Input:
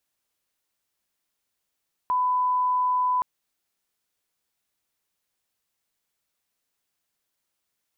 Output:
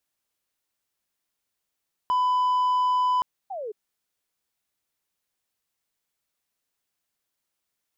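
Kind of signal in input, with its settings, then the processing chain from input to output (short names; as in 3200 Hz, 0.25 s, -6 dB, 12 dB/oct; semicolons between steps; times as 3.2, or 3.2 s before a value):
line-up tone -20 dBFS 1.12 s
sample leveller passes 1; painted sound fall, 3.5–3.72, 400–820 Hz -33 dBFS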